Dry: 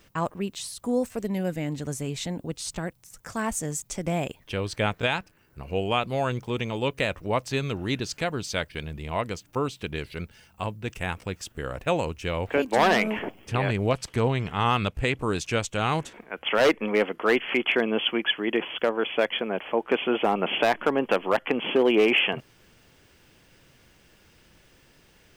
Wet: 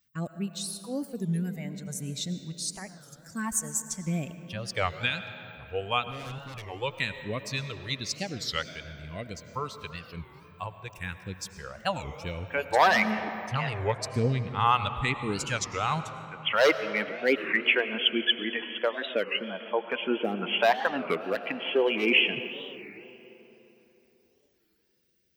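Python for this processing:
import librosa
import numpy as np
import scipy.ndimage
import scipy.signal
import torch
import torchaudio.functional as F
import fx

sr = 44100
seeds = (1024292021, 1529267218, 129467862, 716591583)

y = fx.bin_expand(x, sr, power=1.5)
y = fx.highpass(y, sr, hz=140.0, slope=6)
y = fx.clip_hard(y, sr, threshold_db=-39.5, at=(6.06, 6.67))
y = fx.phaser_stages(y, sr, stages=2, low_hz=210.0, high_hz=1000.0, hz=1.0, feedback_pct=0)
y = fx.rev_freeverb(y, sr, rt60_s=3.7, hf_ratio=0.5, predelay_ms=60, drr_db=10.0)
y = fx.record_warp(y, sr, rpm=33.33, depth_cents=250.0)
y = y * 10.0 ** (4.5 / 20.0)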